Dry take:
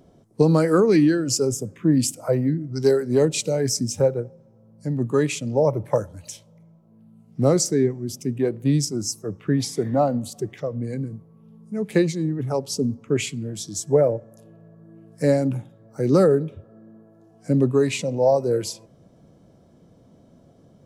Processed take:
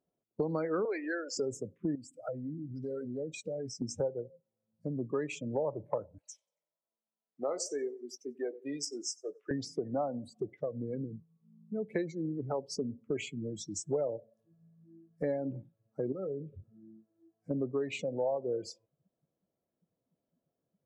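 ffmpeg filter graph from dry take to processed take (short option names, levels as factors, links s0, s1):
-filter_complex "[0:a]asettb=1/sr,asplit=3[s0][s1][s2];[s0]atrim=end=0.854[s3];[s1]atrim=start=0.85:end=1.37,asetpts=PTS-STARTPTS,afade=t=in:d=0.004:c=qsin,afade=t=out:st=0.516:d=0.004:c=qsin,highpass=f=440:w=0.5412,highpass=f=440:w=1.3066,asplit=2[s4][s5];[s5]highpass=f=720:p=1,volume=3.98,asoftclip=type=tanh:threshold=0.316[s6];[s4][s6]amix=inputs=2:normalize=0,lowpass=f=6200:p=1,volume=0.501,highshelf=f=2400:g=-10[s7];[s2]atrim=start=1.366[s8];[s3][s7]acrossfade=d=0.004:c1=hsin:c2=qsin[s9];[s9][s8]acrossfade=d=0.004:c1=qsin:c2=hsin,asettb=1/sr,asplit=3[s10][s11][s12];[s10]atrim=end=1.954[s13];[s11]atrim=start=1.95:end=3.82,asetpts=PTS-STARTPTS,afade=t=in:d=0.004:c=qsin,afade=t=out:st=1.866:d=0.004:c=qsin,equalizer=f=980:t=o:w=0.71:g=-8,bandreject=f=390:w=5.2,acompressor=threshold=0.0316:ratio=6:attack=3.2:release=140:knee=1:detection=peak[s14];[s12]atrim=start=3.816[s15];[s13][s14]acrossfade=d=0.004:c1=hsin:c2=qsin[s16];[s16][s15]acrossfade=d=0.004:c1=qsin:c2=hsin,asettb=1/sr,asplit=3[s17][s18][s19];[s17]atrim=end=6.184[s20];[s18]atrim=start=6.18:end=9.51,asetpts=PTS-STARTPTS,afade=t=in:d=0.004:c=qsin,afade=t=out:st=3.326:d=0.004:c=qsin,highpass=570,asplit=2[s21][s22];[s22]adelay=21,volume=0.282[s23];[s21][s23]amix=inputs=2:normalize=0,atrim=end_sample=146853,aecho=1:1:92|184|276|368:0.158|0.0666|0.028|0.0117,atrim=end_sample=146853[s24];[s19]atrim=start=9.506[s25];[s20][s24]acrossfade=d=0.004:c1=hsin:c2=qsin[s26];[s26][s25]acrossfade=d=0.004:c1=qsin:c2=hsin,asettb=1/sr,asplit=3[s27][s28][s29];[s27]atrim=end=16.124[s30];[s28]atrim=start=16.12:end=17.51,asetpts=PTS-STARTPTS,afade=t=in:d=0.004:c=qsin,afade=t=out:st=1.386:d=0.004:c=qsin,equalizer=f=79:w=0.63:g=8,acompressor=threshold=0.0112:ratio=2:attack=3.2:release=140:knee=1:detection=peak,asplit=2[s31][s32];[s32]adelay=21,volume=0.224[s33];[s31][s33]amix=inputs=2:normalize=0,atrim=end_sample=61299[s34];[s29]atrim=start=17.506[s35];[s30][s34]acrossfade=d=0.004:c1=hsin:c2=qsin[s36];[s36][s35]acrossfade=d=0.004:c1=qsin:c2=hsin,afftdn=nr=29:nf=-32,bass=f=250:g=-10,treble=f=4000:g=-8,acompressor=threshold=0.02:ratio=3"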